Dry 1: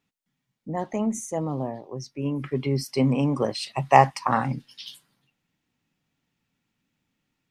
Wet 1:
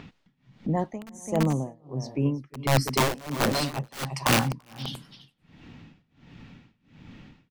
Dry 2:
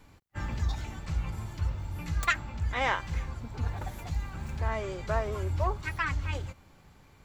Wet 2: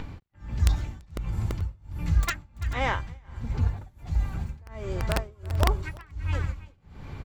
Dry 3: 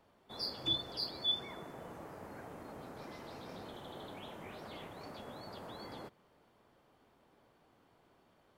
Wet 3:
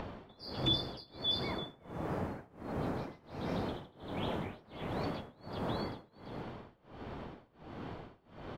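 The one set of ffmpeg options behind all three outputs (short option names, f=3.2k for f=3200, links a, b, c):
-filter_complex "[0:a]lowshelf=f=290:g=9,acrossover=split=4900[a][b];[a]acompressor=mode=upward:threshold=-25dB:ratio=2.5[c];[c][b]amix=inputs=2:normalize=0,aeval=exprs='(mod(3.98*val(0)+1,2)-1)/3.98':c=same,aecho=1:1:337|434:0.299|0.112,tremolo=f=1.4:d=0.96"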